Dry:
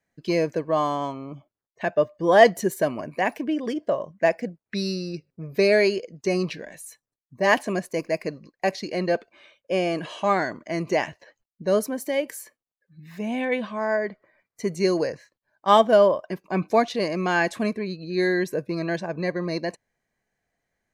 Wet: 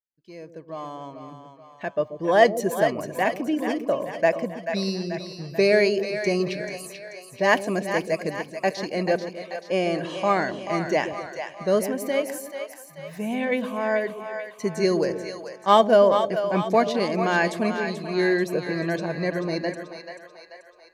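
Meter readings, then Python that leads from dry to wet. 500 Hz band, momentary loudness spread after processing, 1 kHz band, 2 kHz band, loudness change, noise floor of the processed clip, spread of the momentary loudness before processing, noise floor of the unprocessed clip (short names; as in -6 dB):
0.0 dB, 17 LU, 0.0 dB, +0.5 dB, 0.0 dB, -49 dBFS, 14 LU, under -85 dBFS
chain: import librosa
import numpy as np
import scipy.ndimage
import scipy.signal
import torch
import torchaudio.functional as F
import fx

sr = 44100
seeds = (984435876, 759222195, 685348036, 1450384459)

y = fx.fade_in_head(x, sr, length_s=3.18)
y = fx.echo_split(y, sr, split_hz=540.0, low_ms=133, high_ms=436, feedback_pct=52, wet_db=-8.0)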